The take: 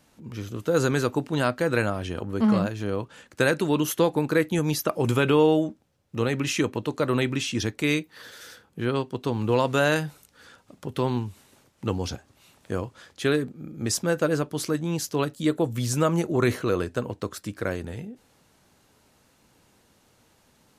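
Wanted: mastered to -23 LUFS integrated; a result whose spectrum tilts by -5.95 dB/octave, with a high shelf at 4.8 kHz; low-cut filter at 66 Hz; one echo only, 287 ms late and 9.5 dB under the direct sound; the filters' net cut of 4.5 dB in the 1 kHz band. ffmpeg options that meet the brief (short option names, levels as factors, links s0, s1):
-af "highpass=66,equalizer=f=1000:t=o:g=-5.5,highshelf=f=4800:g=-8,aecho=1:1:287:0.335,volume=1.5"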